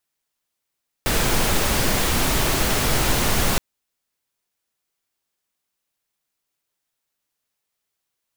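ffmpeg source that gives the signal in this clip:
-f lavfi -i "anoisesrc=c=pink:a=0.543:d=2.52:r=44100:seed=1"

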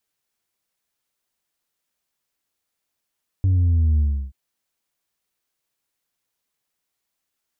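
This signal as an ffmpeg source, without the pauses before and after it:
-f lavfi -i "aevalsrc='0.178*clip((0.88-t)/0.33,0,1)*tanh(1.33*sin(2*PI*96*0.88/log(65/96)*(exp(log(65/96)*t/0.88)-1)))/tanh(1.33)':d=0.88:s=44100"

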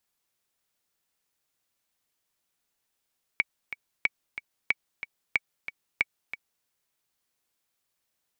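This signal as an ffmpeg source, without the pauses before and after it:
-f lavfi -i "aevalsrc='pow(10,(-9-12.5*gte(mod(t,2*60/184),60/184))/20)*sin(2*PI*2260*mod(t,60/184))*exp(-6.91*mod(t,60/184)/0.03)':d=3.26:s=44100"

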